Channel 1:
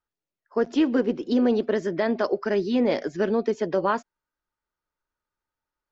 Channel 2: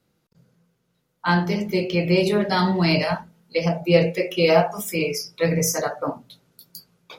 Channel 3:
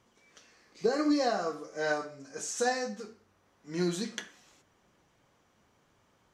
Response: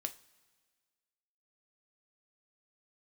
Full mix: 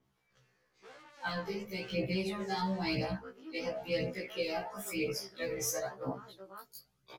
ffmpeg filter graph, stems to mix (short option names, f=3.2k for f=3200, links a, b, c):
-filter_complex "[0:a]equalizer=f=1.3k:t=o:w=0.21:g=14,adelay=2300,volume=-20dB,asplit=2[a][b];[b]volume=-7.5dB[c];[1:a]aphaser=in_gain=1:out_gain=1:delay=2.6:decay=0.68:speed=0.98:type=triangular,adynamicequalizer=threshold=0.0224:dfrequency=2100:dqfactor=0.7:tfrequency=2100:tqfactor=0.7:attack=5:release=100:ratio=0.375:range=2:mode=cutabove:tftype=highshelf,volume=-10.5dB,asplit=2[d][e];[2:a]lowpass=f=1.9k:p=1,aeval=exprs='(tanh(79.4*val(0)+0.65)-tanh(0.65))/79.4':c=same,volume=-3dB[f];[e]apad=whole_len=279261[g];[f][g]sidechaincompress=threshold=-33dB:ratio=8:attack=16:release=252[h];[a][h]amix=inputs=2:normalize=0,highpass=f=1k:p=1,alimiter=level_in=17dB:limit=-24dB:level=0:latency=1:release=35,volume=-17dB,volume=0dB[i];[c]aecho=0:1:362:1[j];[d][i][j]amix=inputs=3:normalize=0,acrossover=split=290|3000[k][l][m];[l]acompressor=threshold=-31dB:ratio=6[n];[k][n][m]amix=inputs=3:normalize=0,afftfilt=real='re*1.73*eq(mod(b,3),0)':imag='im*1.73*eq(mod(b,3),0)':win_size=2048:overlap=0.75"